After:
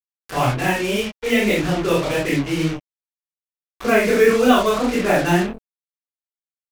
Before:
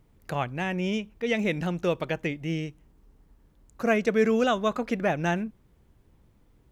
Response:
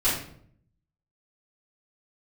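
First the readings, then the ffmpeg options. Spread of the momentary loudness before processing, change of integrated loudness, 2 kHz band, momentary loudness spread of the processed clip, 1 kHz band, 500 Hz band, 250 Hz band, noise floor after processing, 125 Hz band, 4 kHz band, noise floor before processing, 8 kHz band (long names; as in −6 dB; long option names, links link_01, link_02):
9 LU, +8.5 dB, +9.5 dB, 9 LU, +9.5 dB, +8.5 dB, +8.0 dB, below −85 dBFS, +7.5 dB, +11.0 dB, −62 dBFS, can't be measured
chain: -filter_complex "[1:a]atrim=start_sample=2205,atrim=end_sample=4410[link_01];[0:a][link_01]afir=irnorm=-1:irlink=0,acrusher=bits=3:mix=0:aa=0.5,flanger=delay=22.5:depth=7.7:speed=1.8"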